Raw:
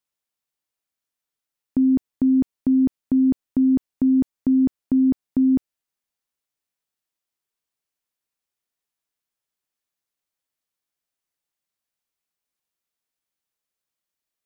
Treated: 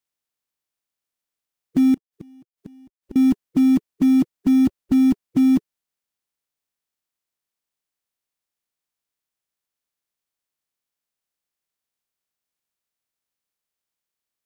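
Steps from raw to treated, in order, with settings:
spectral magnitudes quantised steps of 30 dB
0:01.94–0:03.16: gate with flip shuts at −28 dBFS, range −31 dB
in parallel at −10 dB: log-companded quantiser 4 bits

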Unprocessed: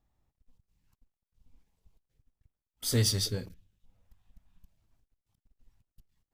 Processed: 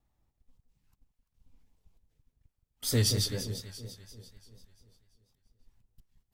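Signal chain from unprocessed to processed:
delay that swaps between a low-pass and a high-pass 171 ms, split 840 Hz, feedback 67%, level −8 dB
pitch vibrato 4.2 Hz 59 cents

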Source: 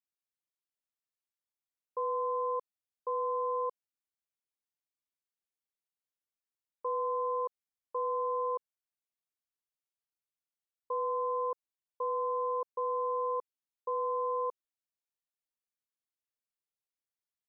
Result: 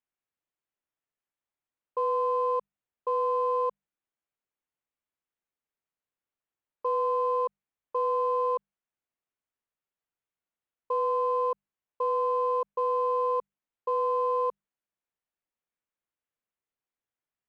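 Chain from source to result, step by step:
adaptive Wiener filter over 9 samples
mains-hum notches 50/100/150/200 Hz
level +6 dB

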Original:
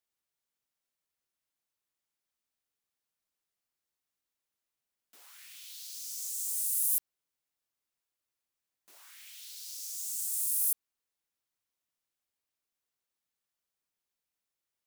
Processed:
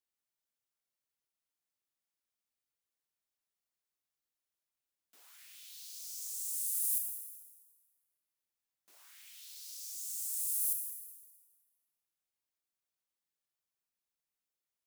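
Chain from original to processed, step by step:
on a send: high-shelf EQ 3,700 Hz +11.5 dB + convolution reverb RT60 1.5 s, pre-delay 7 ms, DRR 10.5 dB
on the sum: level −5.5 dB

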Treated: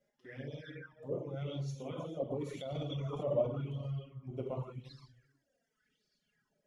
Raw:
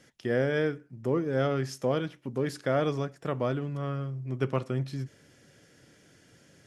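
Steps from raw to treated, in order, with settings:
delay that plays each chunk backwards 189 ms, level −7 dB
source passing by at 0:03.01, 7 m/s, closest 1.9 metres
low-shelf EQ 190 Hz +9.5 dB
reverb whose tail is shaped and stops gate 200 ms flat, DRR −2.5 dB
brickwall limiter −25 dBFS, peak gain reduction 15 dB
flanger swept by the level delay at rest 5 ms, full sweep at −33.5 dBFS
reverb reduction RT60 1.5 s
echo ahead of the sound 57 ms −23.5 dB
auto-filter bell 0.9 Hz 570–4,600 Hz +17 dB
level −4 dB

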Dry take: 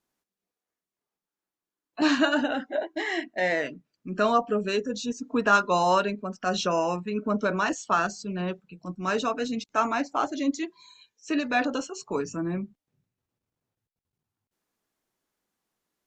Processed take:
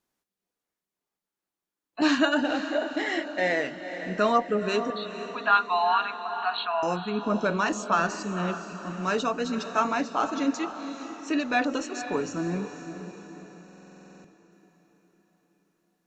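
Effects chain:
0:04.90–0:06.83: linear-phase brick-wall band-pass 640–4,500 Hz
feedback delay with all-pass diffusion 491 ms, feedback 49%, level −10 dB
buffer that repeats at 0:13.64, samples 2,048, times 12

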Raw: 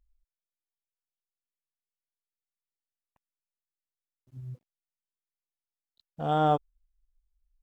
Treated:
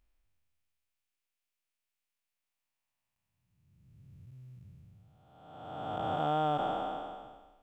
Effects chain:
spectrum smeared in time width 925 ms
graphic EQ with 15 bands 160 Hz −5 dB, 400 Hz −5 dB, 2,500 Hz +7 dB
level +6 dB

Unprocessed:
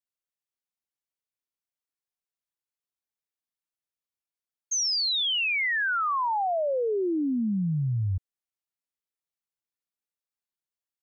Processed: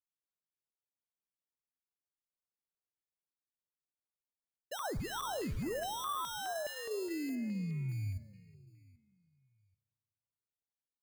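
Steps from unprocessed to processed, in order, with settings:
adaptive Wiener filter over 9 samples
brickwall limiter −27 dBFS, peak gain reduction 4 dB
flanger 0.69 Hz, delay 3.2 ms, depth 4.9 ms, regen −82%
decimation without filtering 19×
0:07.35–0:07.89: high-frequency loss of the air 100 metres
repeating echo 783 ms, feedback 22%, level −23.5 dB
on a send at −15.5 dB: convolution reverb RT60 1.9 s, pre-delay 9 ms
on the sum: notch on a step sequencer 4.8 Hz 580–5,100 Hz
level −2.5 dB

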